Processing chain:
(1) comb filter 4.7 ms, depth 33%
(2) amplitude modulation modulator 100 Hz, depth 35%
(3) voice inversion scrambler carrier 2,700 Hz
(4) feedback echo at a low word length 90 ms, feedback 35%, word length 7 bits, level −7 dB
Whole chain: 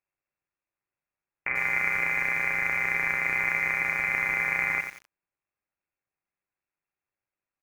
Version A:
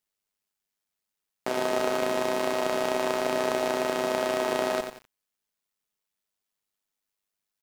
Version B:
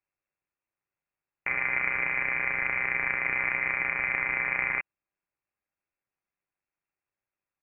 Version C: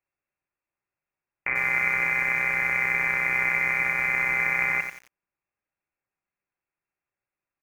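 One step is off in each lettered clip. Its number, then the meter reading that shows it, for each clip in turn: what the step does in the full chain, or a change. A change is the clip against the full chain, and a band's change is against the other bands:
3, 2 kHz band −21.0 dB
4, change in integrated loudness −2.0 LU
2, change in integrated loudness +2.5 LU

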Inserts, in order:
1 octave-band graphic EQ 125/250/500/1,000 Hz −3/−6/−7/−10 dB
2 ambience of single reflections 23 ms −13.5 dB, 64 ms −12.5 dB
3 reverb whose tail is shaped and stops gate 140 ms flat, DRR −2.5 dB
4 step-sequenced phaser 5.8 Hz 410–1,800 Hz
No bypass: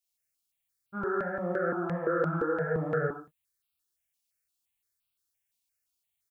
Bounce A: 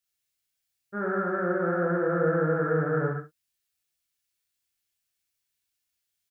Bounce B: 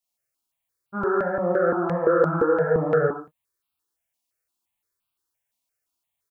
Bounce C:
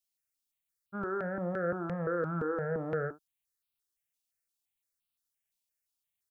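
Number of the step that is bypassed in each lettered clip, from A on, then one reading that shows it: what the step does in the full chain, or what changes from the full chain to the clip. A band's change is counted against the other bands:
4, change in momentary loudness spread +1 LU
1, 500 Hz band +4.0 dB
3, change in momentary loudness spread −1 LU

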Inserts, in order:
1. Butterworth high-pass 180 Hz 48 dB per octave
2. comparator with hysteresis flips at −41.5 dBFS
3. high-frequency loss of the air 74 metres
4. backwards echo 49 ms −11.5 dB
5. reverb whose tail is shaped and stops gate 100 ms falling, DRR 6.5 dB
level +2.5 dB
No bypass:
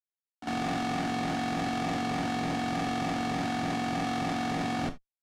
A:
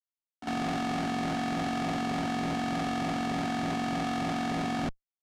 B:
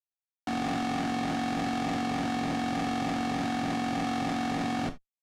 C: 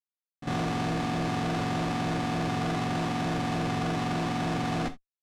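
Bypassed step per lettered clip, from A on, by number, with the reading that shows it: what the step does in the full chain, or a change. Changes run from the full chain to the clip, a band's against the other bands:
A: 5, change in crest factor −5.5 dB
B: 4, 250 Hz band +2.0 dB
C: 1, 125 Hz band +6.0 dB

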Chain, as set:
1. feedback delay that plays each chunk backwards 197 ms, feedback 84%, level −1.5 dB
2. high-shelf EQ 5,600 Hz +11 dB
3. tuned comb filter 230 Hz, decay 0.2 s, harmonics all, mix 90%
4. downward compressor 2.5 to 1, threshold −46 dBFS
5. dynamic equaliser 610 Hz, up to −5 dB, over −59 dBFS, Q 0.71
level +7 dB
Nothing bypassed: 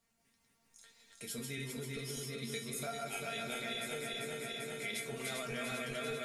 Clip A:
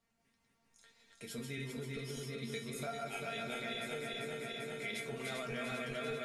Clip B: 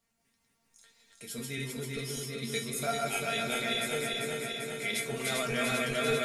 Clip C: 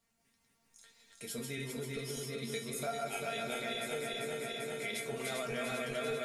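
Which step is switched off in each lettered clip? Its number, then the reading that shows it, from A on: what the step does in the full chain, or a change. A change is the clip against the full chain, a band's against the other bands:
2, 8 kHz band −7.0 dB
4, average gain reduction 6.5 dB
5, change in integrated loudness +2.0 LU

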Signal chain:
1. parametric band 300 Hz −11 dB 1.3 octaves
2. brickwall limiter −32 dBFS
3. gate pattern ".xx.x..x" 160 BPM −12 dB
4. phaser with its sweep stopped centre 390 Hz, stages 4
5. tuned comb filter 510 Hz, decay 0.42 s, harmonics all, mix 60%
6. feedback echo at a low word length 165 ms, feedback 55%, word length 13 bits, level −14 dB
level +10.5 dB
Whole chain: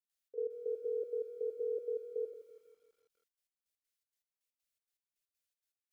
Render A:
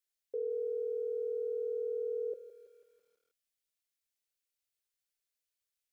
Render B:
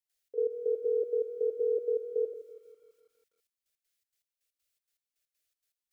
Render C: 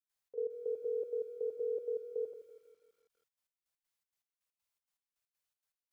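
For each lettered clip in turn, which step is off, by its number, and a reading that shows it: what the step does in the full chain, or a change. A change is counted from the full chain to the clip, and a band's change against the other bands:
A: 3, change in crest factor −2.5 dB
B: 5, change in integrated loudness +7.5 LU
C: 4, change in momentary loudness spread −3 LU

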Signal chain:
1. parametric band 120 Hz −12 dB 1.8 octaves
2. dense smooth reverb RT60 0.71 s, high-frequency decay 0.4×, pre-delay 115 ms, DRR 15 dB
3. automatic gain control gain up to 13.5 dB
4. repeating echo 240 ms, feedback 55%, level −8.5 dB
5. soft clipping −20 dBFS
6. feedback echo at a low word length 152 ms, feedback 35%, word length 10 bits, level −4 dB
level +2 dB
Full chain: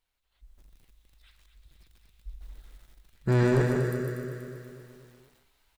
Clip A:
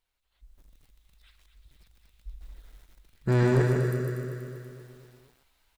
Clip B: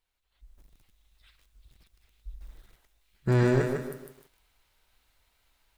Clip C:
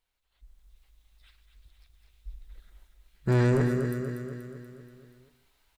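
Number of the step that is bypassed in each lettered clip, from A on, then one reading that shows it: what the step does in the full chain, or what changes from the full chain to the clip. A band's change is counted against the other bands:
2, 125 Hz band +2.0 dB
4, change in crest factor +1.5 dB
6, 250 Hz band +2.0 dB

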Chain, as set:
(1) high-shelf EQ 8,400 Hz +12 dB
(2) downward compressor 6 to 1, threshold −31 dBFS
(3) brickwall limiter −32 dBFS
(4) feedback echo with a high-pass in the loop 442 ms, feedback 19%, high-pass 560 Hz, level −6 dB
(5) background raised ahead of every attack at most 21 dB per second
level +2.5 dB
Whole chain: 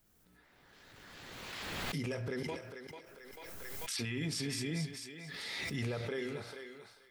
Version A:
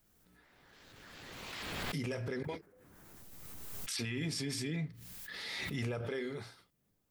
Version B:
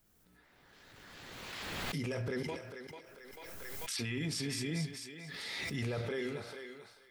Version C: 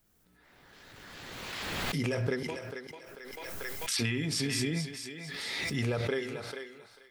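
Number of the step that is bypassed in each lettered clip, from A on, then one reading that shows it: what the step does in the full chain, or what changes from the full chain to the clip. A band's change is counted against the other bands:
4, change in momentary loudness spread +2 LU
2, average gain reduction 3.5 dB
3, average gain reduction 2.5 dB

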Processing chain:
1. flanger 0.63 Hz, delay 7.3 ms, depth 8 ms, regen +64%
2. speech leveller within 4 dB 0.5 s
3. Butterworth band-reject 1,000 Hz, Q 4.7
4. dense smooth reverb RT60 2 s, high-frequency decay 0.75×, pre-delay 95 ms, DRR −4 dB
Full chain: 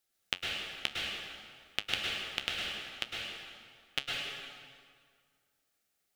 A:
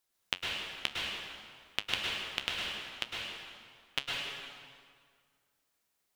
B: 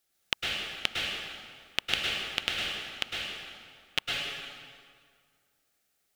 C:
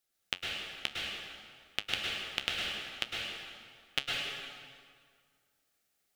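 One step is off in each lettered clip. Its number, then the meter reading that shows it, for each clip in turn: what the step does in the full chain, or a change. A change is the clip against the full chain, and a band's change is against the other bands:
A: 3, 1 kHz band +1.5 dB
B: 1, change in integrated loudness +4.0 LU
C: 2, change in momentary loudness spread −1 LU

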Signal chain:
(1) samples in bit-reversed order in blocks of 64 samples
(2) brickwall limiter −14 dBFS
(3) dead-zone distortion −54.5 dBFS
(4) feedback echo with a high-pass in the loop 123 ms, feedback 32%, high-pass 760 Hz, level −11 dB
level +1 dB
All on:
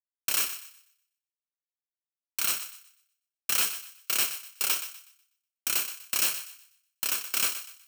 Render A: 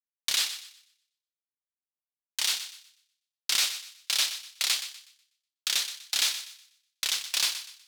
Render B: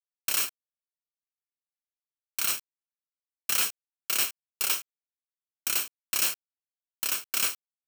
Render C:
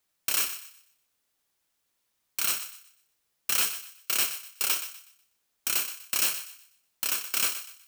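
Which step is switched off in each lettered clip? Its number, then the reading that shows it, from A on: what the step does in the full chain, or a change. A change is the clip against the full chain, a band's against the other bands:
1, 4 kHz band +8.5 dB
4, echo-to-direct ratio −12.0 dB to none audible
3, distortion level −29 dB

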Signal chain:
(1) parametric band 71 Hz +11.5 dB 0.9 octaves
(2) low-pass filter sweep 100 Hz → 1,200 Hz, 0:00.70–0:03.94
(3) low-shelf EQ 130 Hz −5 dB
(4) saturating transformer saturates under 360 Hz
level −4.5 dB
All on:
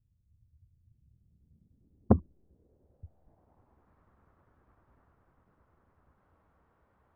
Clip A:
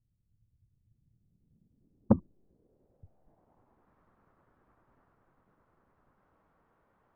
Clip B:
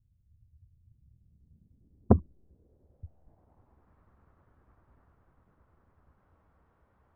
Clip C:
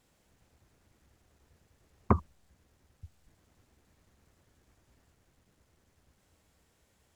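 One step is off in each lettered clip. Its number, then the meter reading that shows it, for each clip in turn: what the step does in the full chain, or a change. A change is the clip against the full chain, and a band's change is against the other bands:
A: 1, 250 Hz band +3.5 dB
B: 3, change in integrated loudness +2.0 LU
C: 2, 1 kHz band +8.5 dB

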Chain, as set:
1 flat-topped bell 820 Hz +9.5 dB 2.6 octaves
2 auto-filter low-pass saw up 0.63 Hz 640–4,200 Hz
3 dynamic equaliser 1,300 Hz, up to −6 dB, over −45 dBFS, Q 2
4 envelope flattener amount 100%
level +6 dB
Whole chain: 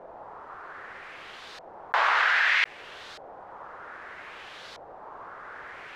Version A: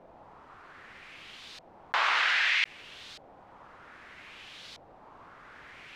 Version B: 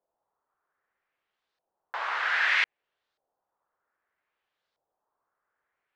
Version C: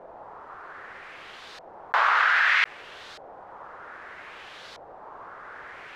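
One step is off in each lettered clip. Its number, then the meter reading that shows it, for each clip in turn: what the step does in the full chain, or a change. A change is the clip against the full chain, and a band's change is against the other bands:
1, 4 kHz band +7.0 dB
4, change in crest factor +2.5 dB
3, 1 kHz band +3.0 dB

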